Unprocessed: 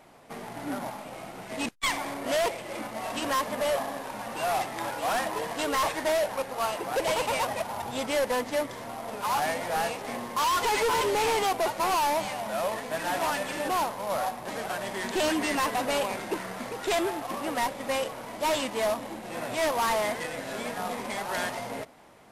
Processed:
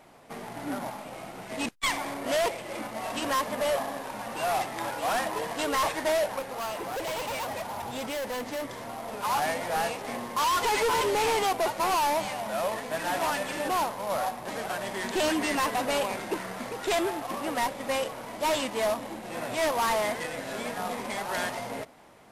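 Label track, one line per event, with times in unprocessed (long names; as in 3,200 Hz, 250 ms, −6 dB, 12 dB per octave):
6.390000	9.180000	gain into a clipping stage and back gain 30.5 dB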